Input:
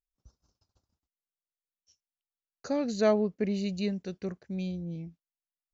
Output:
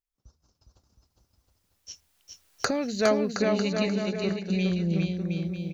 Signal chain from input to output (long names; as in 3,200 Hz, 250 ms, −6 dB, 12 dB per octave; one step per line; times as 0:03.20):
camcorder AGC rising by 12 dB per second
hum removal 76.8 Hz, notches 3
dynamic equaliser 2,300 Hz, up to +7 dB, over −48 dBFS, Q 0.84
bouncing-ball delay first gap 410 ms, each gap 0.75×, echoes 5
gain into a clipping stage and back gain 13 dB